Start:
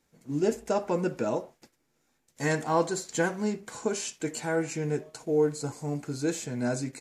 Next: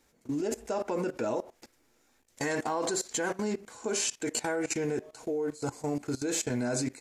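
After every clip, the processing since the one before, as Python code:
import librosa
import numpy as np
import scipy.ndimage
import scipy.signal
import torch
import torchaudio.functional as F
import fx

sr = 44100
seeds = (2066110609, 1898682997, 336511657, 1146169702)

y = fx.peak_eq(x, sr, hz=160.0, db=-11.5, octaves=0.51)
y = fx.level_steps(y, sr, step_db=19)
y = y * 10.0 ** (8.0 / 20.0)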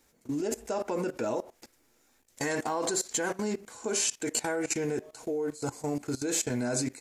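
y = fx.high_shelf(x, sr, hz=8300.0, db=6.5)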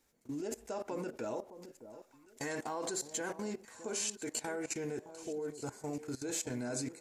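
y = fx.echo_alternate(x, sr, ms=614, hz=990.0, feedback_pct=51, wet_db=-12.5)
y = y * 10.0 ** (-8.0 / 20.0)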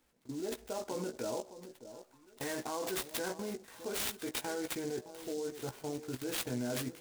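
y = fx.doubler(x, sr, ms=16.0, db=-7.0)
y = np.repeat(y[::4], 4)[:len(y)]
y = fx.noise_mod_delay(y, sr, seeds[0], noise_hz=5700.0, depth_ms=0.059)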